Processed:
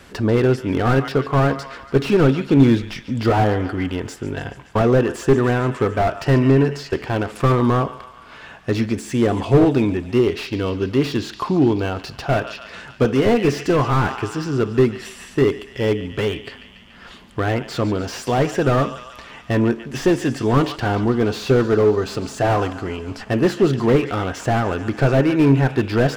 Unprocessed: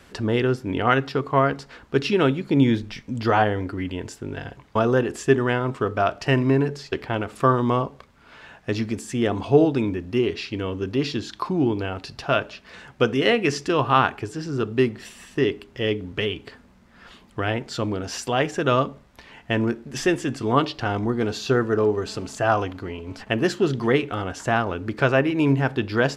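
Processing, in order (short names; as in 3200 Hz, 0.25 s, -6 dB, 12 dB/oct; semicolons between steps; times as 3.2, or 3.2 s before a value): thinning echo 0.143 s, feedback 74%, high-pass 760 Hz, level -17 dB; slew limiter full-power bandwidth 70 Hz; gain +5.5 dB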